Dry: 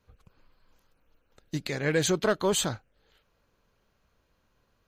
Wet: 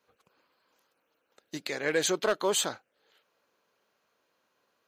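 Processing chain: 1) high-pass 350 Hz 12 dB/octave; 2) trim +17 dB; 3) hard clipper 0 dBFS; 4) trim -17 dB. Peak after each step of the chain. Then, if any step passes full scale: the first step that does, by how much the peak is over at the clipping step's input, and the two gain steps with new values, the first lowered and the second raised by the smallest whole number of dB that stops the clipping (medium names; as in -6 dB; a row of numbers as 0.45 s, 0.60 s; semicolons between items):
-13.0 dBFS, +4.0 dBFS, 0.0 dBFS, -17.0 dBFS; step 2, 4.0 dB; step 2 +13 dB, step 4 -13 dB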